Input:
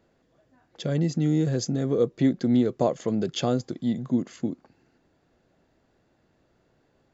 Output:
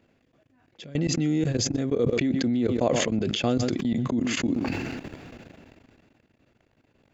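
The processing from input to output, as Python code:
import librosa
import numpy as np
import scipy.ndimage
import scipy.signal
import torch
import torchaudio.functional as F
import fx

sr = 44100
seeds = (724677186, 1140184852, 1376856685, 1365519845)

p1 = fx.graphic_eq_15(x, sr, hz=(100, 250, 2500), db=(6, 6, 10))
p2 = p1 + fx.echo_single(p1, sr, ms=127, db=-22.0, dry=0)
p3 = fx.level_steps(p2, sr, step_db=21)
p4 = fx.dynamic_eq(p3, sr, hz=170.0, q=1.2, threshold_db=-38.0, ratio=4.0, max_db=-5)
y = fx.sustainer(p4, sr, db_per_s=23.0)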